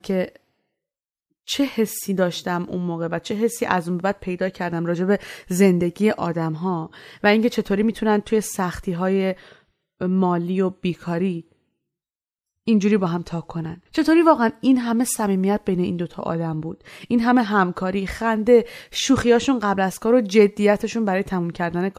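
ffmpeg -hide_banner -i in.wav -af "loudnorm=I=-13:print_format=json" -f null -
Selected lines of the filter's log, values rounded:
"input_i" : "-20.8",
"input_tp" : "-2.0",
"input_lra" : "4.9",
"input_thresh" : "-31.1",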